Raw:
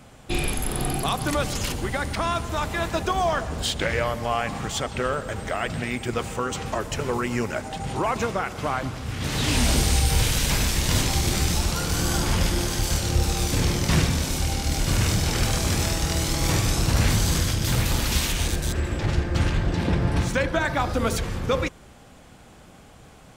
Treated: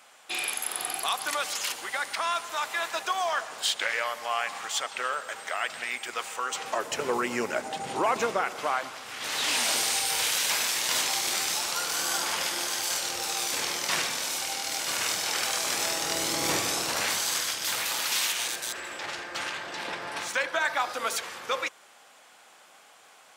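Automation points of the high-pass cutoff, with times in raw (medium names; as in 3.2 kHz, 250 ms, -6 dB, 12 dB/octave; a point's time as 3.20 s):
6.41 s 950 Hz
7.05 s 340 Hz
8.32 s 340 Hz
8.89 s 740 Hz
15.58 s 740 Hz
16.45 s 320 Hz
17.27 s 840 Hz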